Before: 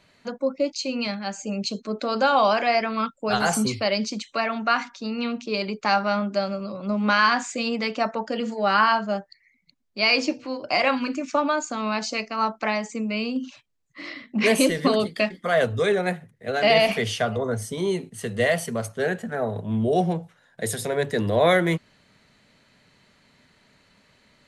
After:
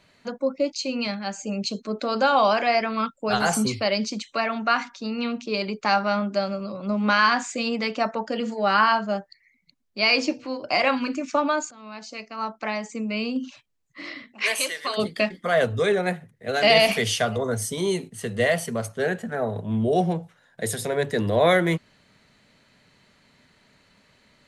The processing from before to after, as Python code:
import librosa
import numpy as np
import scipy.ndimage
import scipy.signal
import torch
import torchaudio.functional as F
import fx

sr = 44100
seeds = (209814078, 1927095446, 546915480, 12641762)

y = fx.highpass(x, sr, hz=1000.0, slope=12, at=(14.32, 14.97), fade=0.02)
y = fx.high_shelf(y, sr, hz=3700.0, db=8.5, at=(16.49, 18.08))
y = fx.edit(y, sr, fx.fade_in_from(start_s=11.71, length_s=1.56, floor_db=-21.0), tone=tone)